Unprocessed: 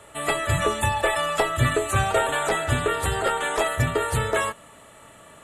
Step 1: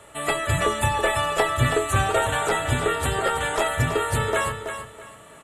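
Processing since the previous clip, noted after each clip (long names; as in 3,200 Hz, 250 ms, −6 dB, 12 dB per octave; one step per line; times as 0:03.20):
repeating echo 327 ms, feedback 26%, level −8.5 dB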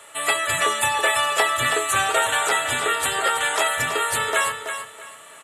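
high-pass filter 1,500 Hz 6 dB per octave
level +7 dB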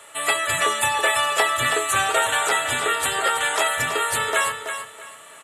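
no processing that can be heard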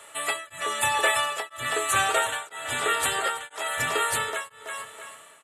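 tremolo along a rectified sine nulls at 1 Hz
level −2 dB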